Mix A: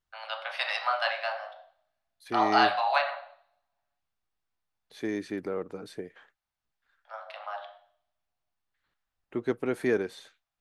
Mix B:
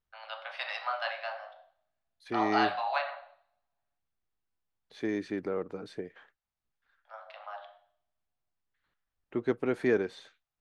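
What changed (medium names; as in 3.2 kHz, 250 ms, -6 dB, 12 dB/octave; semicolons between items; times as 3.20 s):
first voice -5.0 dB; master: add distance through air 72 m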